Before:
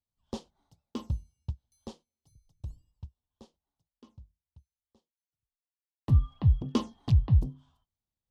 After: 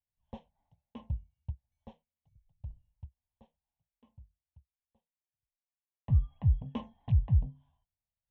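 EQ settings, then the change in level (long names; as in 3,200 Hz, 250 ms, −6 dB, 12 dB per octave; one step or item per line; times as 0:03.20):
high-frequency loss of the air 300 metres
phaser with its sweep stopped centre 1,300 Hz, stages 6
−2.5 dB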